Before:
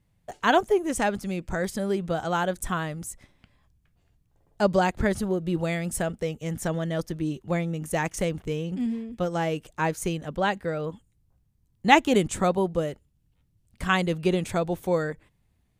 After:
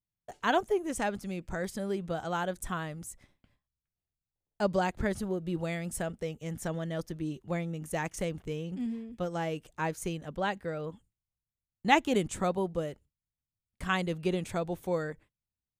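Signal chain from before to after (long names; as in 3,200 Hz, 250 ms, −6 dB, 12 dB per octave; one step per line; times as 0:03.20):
noise gate with hold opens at −44 dBFS
level −6.5 dB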